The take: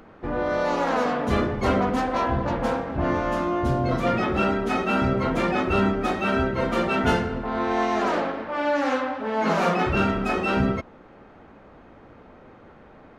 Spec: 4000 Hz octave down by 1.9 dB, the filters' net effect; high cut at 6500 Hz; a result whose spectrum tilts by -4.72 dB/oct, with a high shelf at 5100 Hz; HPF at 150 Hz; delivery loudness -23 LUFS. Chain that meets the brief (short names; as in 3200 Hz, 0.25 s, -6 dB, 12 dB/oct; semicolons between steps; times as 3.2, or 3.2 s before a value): HPF 150 Hz; LPF 6500 Hz; bell 4000 Hz -4.5 dB; high shelf 5100 Hz +5.5 dB; gain +1.5 dB